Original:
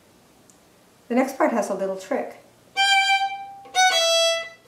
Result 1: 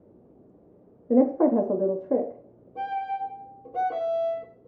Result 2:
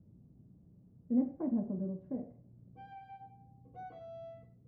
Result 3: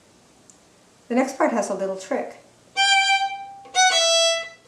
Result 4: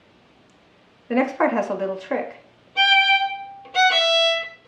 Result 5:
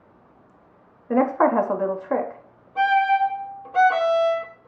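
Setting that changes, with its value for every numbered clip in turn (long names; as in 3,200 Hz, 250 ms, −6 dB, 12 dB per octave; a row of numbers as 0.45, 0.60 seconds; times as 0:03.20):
low-pass with resonance, frequency: 440, 150, 7,900, 3,100, 1,200 Hertz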